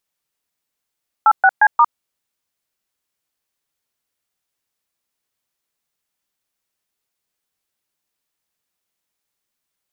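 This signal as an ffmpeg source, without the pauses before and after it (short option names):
-f lavfi -i "aevalsrc='0.316*clip(min(mod(t,0.177),0.055-mod(t,0.177))/0.002,0,1)*(eq(floor(t/0.177),0)*(sin(2*PI*852*mod(t,0.177))+sin(2*PI*1336*mod(t,0.177)))+eq(floor(t/0.177),1)*(sin(2*PI*770*mod(t,0.177))+sin(2*PI*1477*mod(t,0.177)))+eq(floor(t/0.177),2)*(sin(2*PI*852*mod(t,0.177))+sin(2*PI*1633*mod(t,0.177)))+eq(floor(t/0.177),3)*(sin(2*PI*941*mod(t,0.177))+sin(2*PI*1209*mod(t,0.177))))':d=0.708:s=44100"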